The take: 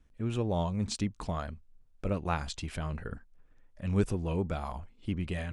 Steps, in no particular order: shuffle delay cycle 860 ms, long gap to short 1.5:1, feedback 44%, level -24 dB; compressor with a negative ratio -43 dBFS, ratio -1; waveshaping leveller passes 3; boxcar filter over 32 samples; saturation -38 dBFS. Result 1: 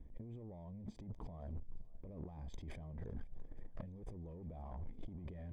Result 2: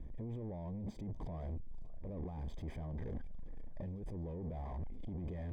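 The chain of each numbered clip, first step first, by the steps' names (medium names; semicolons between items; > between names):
waveshaping leveller > compressor with a negative ratio > boxcar filter > saturation > shuffle delay; compressor with a negative ratio > saturation > shuffle delay > waveshaping leveller > boxcar filter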